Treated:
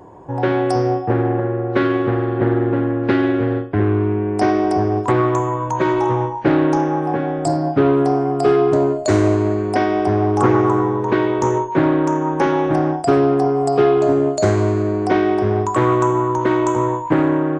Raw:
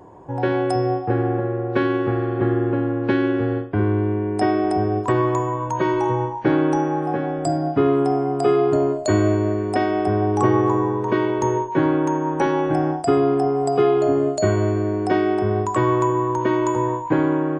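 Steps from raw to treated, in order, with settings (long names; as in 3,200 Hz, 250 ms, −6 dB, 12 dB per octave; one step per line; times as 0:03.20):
highs frequency-modulated by the lows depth 0.29 ms
level +3 dB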